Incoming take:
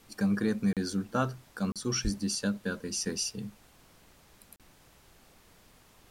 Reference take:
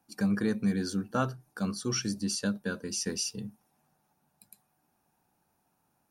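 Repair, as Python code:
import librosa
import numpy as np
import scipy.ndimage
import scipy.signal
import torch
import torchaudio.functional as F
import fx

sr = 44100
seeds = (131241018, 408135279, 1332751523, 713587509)

y = fx.highpass(x, sr, hz=140.0, slope=24, at=(2.03, 2.15), fade=0.02)
y = fx.fix_interpolate(y, sr, at_s=(0.73, 1.72, 4.56), length_ms=37.0)
y = fx.noise_reduce(y, sr, print_start_s=5.54, print_end_s=6.04, reduce_db=15.0)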